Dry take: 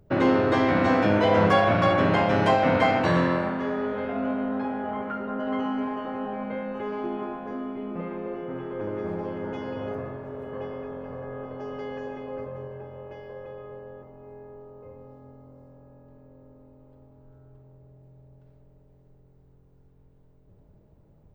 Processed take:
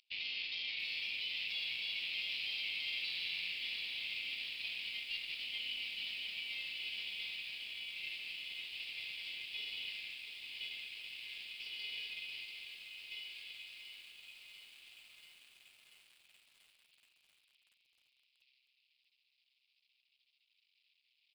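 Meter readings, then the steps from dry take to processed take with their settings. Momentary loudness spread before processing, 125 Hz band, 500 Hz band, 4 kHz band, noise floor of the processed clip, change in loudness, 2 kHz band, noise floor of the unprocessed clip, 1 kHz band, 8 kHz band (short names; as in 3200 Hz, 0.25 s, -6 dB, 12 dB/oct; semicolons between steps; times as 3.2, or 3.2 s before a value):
20 LU, under -40 dB, under -40 dB, +3.0 dB, -79 dBFS, -14.0 dB, -9.0 dB, -57 dBFS, under -40 dB, n/a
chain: half-wave gain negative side -12 dB; steep high-pass 2400 Hz 72 dB/oct; limiter -37 dBFS, peak gain reduction 11.5 dB; reverse; compressor 4:1, threshold -58 dBFS, peak gain reduction 13 dB; reverse; added harmonics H 6 -33 dB, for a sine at -46.5 dBFS; downsampling 11025 Hz; lo-fi delay 0.687 s, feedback 80%, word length 13-bit, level -9 dB; gain +18 dB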